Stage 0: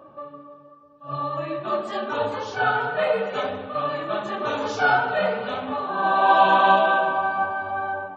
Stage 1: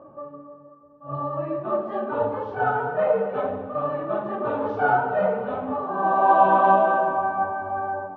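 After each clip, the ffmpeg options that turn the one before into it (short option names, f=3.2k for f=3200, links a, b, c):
-af "lowpass=1k,volume=2dB"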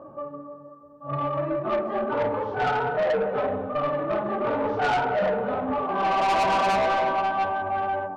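-af "asoftclip=type=tanh:threshold=-22.5dB,volume=3dB"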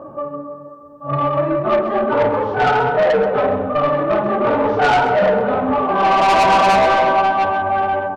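-af "aecho=1:1:130:0.211,volume=9dB"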